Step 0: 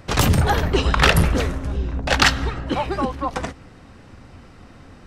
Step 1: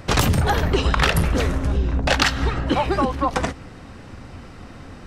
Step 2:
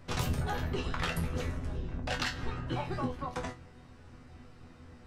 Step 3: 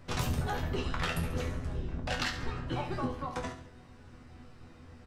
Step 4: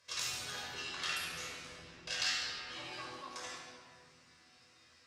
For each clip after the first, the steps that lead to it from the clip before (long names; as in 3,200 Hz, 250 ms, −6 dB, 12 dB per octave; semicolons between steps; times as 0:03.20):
downward compressor 6 to 1, threshold −20 dBFS, peak gain reduction 10 dB; level +5 dB
sub-octave generator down 1 octave, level 0 dB; resonators tuned to a chord E2 fifth, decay 0.22 s; level −6 dB
repeating echo 70 ms, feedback 43%, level −10.5 dB
resonant band-pass 5,800 Hz, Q 1.2; rectangular room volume 3,400 cubic metres, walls mixed, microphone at 5.4 metres; level +1 dB